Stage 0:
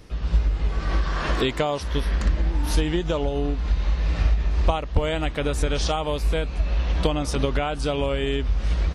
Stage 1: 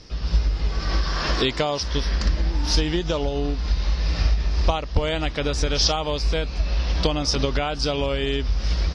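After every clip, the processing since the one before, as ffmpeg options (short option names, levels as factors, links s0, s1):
-af "lowpass=f=5200:t=q:w=5.6"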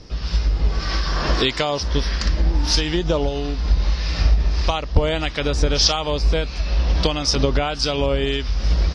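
-filter_complex "[0:a]acrossover=split=1100[s0][s1];[s0]aeval=exprs='val(0)*(1-0.5/2+0.5/2*cos(2*PI*1.6*n/s))':c=same[s2];[s1]aeval=exprs='val(0)*(1-0.5/2-0.5/2*cos(2*PI*1.6*n/s))':c=same[s3];[s2][s3]amix=inputs=2:normalize=0,volume=1.78"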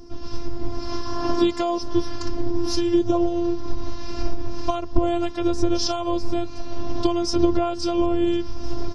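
-af "equalizer=f=125:t=o:w=1:g=7,equalizer=f=250:t=o:w=1:g=9,equalizer=f=1000:t=o:w=1:g=4,equalizer=f=2000:t=o:w=1:g=-11,equalizer=f=4000:t=o:w=1:g=-7,afftfilt=real='hypot(re,im)*cos(PI*b)':imag='0':win_size=512:overlap=0.75"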